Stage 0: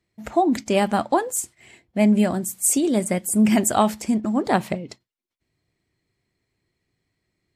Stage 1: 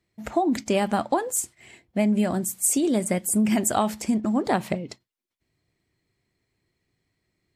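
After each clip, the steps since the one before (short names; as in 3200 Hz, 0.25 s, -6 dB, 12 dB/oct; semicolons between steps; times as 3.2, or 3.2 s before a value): compressor, threshold -18 dBFS, peak gain reduction 6 dB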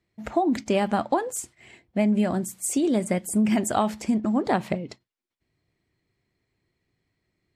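high shelf 7600 Hz -11.5 dB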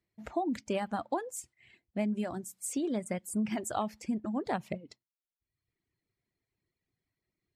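reverb removal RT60 1 s; gain -9 dB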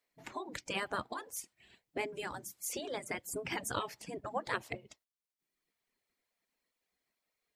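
spectral gate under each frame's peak -10 dB weak; gain +5.5 dB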